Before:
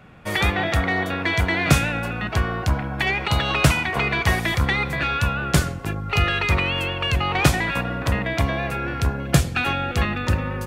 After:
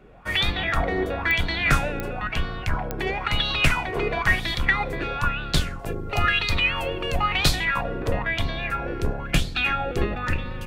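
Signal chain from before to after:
sub-octave generator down 2 octaves, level +4 dB
0:05.79–0:07.65: high-shelf EQ 6,400 Hz +7.5 dB
digital clicks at 0:01.31/0:02.00/0:02.91, −4 dBFS
auto-filter bell 1 Hz 380–4,200 Hz +16 dB
level −8.5 dB

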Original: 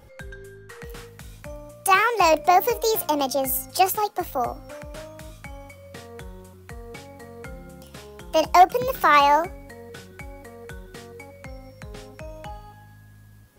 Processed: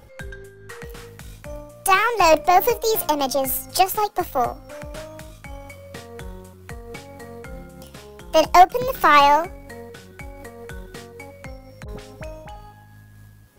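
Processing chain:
gain on one half-wave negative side −3 dB
0:11.84–0:12.56: all-pass dispersion highs, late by 45 ms, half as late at 930 Hz
amplitude modulation by smooth noise, depth 65%
level +7 dB

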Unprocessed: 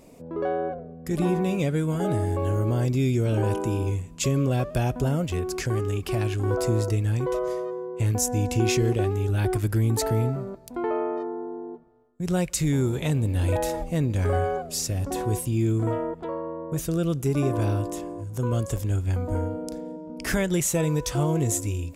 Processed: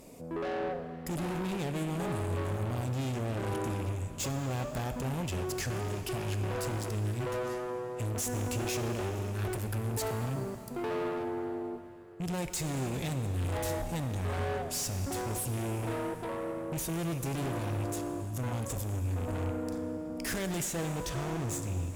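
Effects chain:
loose part that buzzes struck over −27 dBFS, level −35 dBFS
high-shelf EQ 5,200 Hz +5.5 dB, from 0:20.65 −7.5 dB
tube saturation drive 32 dB, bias 0.4
dense smooth reverb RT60 3.9 s, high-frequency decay 0.9×, DRR 8 dB

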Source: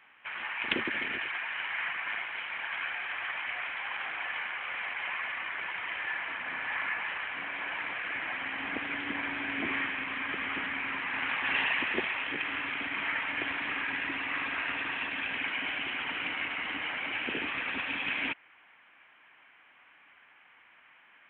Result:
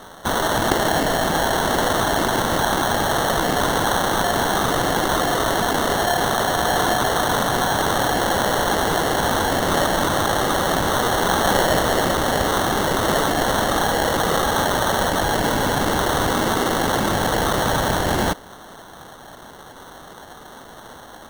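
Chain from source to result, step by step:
flat-topped bell 1,000 Hz +16 dB 2.7 octaves
in parallel at 0 dB: compressor whose output falls as the input rises −24 dBFS, ratio −1
on the sum: decimation without filtering 18×
level −3.5 dB

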